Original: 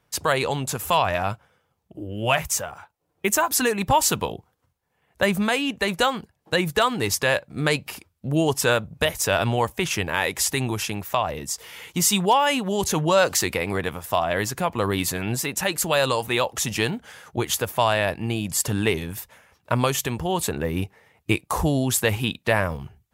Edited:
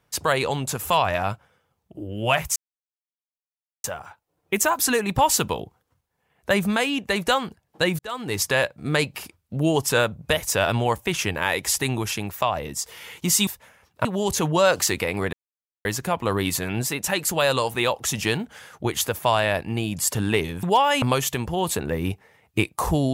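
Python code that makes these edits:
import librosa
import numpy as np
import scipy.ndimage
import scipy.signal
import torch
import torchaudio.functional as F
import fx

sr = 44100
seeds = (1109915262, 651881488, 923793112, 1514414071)

y = fx.edit(x, sr, fx.insert_silence(at_s=2.56, length_s=1.28),
    fx.fade_in_span(start_s=6.71, length_s=0.45),
    fx.swap(start_s=12.19, length_s=0.39, other_s=19.16, other_length_s=0.58),
    fx.silence(start_s=13.86, length_s=0.52), tone=tone)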